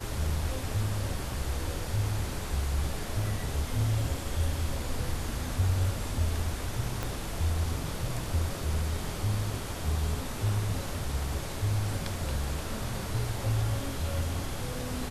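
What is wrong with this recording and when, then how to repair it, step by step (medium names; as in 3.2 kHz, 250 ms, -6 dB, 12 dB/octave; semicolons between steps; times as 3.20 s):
7.03 s: pop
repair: de-click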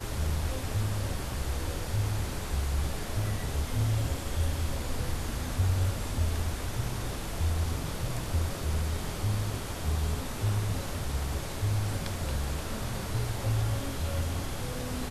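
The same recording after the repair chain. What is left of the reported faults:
7.03 s: pop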